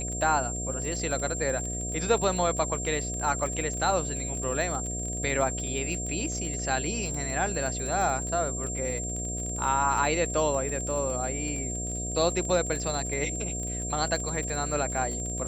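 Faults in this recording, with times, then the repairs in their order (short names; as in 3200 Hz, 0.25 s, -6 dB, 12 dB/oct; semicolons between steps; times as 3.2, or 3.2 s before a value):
buzz 60 Hz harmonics 12 -35 dBFS
crackle 28/s -32 dBFS
tone 7400 Hz -33 dBFS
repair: de-click; de-hum 60 Hz, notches 12; notch 7400 Hz, Q 30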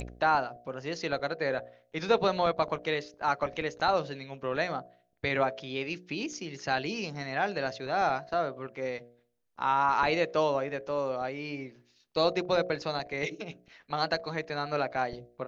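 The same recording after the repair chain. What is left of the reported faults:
none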